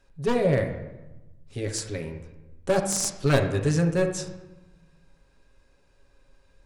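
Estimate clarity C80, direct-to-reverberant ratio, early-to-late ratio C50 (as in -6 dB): 10.0 dB, 2.0 dB, 7.5 dB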